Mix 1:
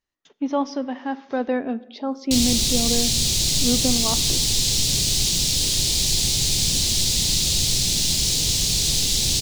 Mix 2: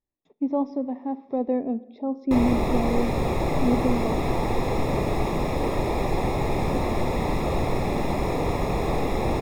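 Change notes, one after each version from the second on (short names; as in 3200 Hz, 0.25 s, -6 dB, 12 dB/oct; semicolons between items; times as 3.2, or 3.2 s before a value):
background: remove EQ curve 140 Hz 0 dB, 1400 Hz -30 dB, 4000 Hz +3 dB, 7000 Hz +2 dB, 14000 Hz -11 dB; master: add running mean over 29 samples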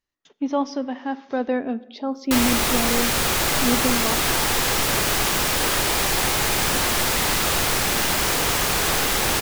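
background -3.5 dB; master: remove running mean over 29 samples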